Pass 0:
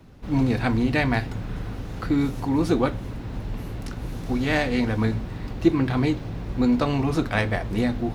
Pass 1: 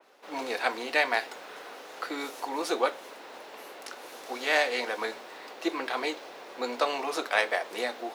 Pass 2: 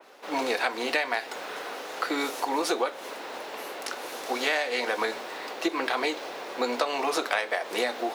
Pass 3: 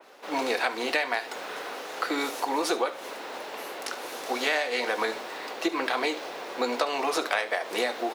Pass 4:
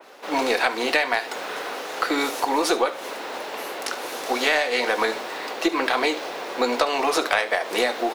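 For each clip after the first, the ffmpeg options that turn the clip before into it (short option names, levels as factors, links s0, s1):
-af "highpass=f=470:w=0.5412,highpass=f=470:w=1.3066,adynamicequalizer=threshold=0.00631:dfrequency=3200:dqfactor=0.7:tfrequency=3200:tqfactor=0.7:attack=5:release=100:ratio=0.375:range=1.5:mode=boostabove:tftype=highshelf"
-af "acompressor=threshold=0.0316:ratio=12,volume=2.37"
-af "aecho=1:1:72:0.15"
-af "aeval=exprs='0.422*(cos(1*acos(clip(val(0)/0.422,-1,1)))-cos(1*PI/2))+0.00841*(cos(4*acos(clip(val(0)/0.422,-1,1)))-cos(4*PI/2))':c=same,volume=1.88"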